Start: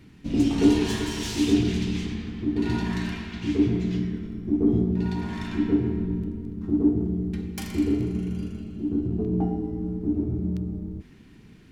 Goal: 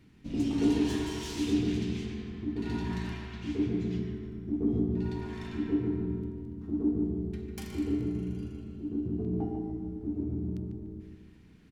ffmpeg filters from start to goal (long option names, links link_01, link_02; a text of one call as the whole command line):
ffmpeg -i in.wav -filter_complex "[0:a]asplit=2[link_01][link_02];[link_02]adelay=147,lowpass=frequency=2000:poles=1,volume=-5dB,asplit=2[link_03][link_04];[link_04]adelay=147,lowpass=frequency=2000:poles=1,volume=0.47,asplit=2[link_05][link_06];[link_06]adelay=147,lowpass=frequency=2000:poles=1,volume=0.47,asplit=2[link_07][link_08];[link_08]adelay=147,lowpass=frequency=2000:poles=1,volume=0.47,asplit=2[link_09][link_10];[link_10]adelay=147,lowpass=frequency=2000:poles=1,volume=0.47,asplit=2[link_11][link_12];[link_12]adelay=147,lowpass=frequency=2000:poles=1,volume=0.47[link_13];[link_01][link_03][link_05][link_07][link_09][link_11][link_13]amix=inputs=7:normalize=0,volume=-8.5dB" out.wav